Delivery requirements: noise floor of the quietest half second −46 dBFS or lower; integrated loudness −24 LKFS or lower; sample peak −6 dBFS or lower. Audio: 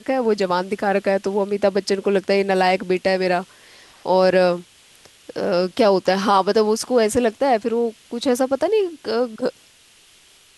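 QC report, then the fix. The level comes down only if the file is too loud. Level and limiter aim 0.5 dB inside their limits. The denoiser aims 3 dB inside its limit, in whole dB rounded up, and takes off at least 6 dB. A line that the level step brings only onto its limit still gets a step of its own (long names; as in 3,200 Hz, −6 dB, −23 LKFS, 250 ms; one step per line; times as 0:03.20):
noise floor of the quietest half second −52 dBFS: in spec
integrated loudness −19.5 LKFS: out of spec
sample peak −5.0 dBFS: out of spec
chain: level −5 dB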